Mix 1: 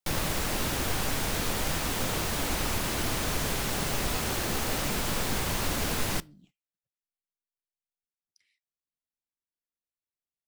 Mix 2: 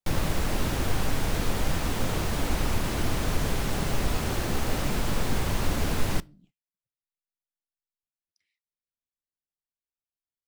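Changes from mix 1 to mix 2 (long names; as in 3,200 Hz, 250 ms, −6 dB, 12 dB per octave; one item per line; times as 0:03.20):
speech −5.0 dB
master: add spectral tilt −1.5 dB per octave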